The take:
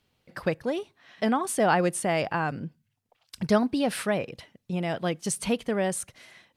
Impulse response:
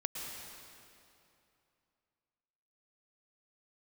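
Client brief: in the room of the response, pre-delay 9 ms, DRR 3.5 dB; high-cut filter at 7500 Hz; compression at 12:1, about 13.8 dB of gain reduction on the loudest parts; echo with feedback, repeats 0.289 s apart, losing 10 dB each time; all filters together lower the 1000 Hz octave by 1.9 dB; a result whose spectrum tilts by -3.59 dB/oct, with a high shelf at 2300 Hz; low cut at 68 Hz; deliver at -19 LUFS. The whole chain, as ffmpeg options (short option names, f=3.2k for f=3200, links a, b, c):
-filter_complex "[0:a]highpass=68,lowpass=7.5k,equalizer=f=1k:t=o:g=-4,highshelf=f=2.3k:g=7.5,acompressor=threshold=-32dB:ratio=12,aecho=1:1:289|578|867|1156:0.316|0.101|0.0324|0.0104,asplit=2[a][b];[1:a]atrim=start_sample=2205,adelay=9[c];[b][c]afir=irnorm=-1:irlink=0,volume=-5.5dB[d];[a][d]amix=inputs=2:normalize=0,volume=16.5dB"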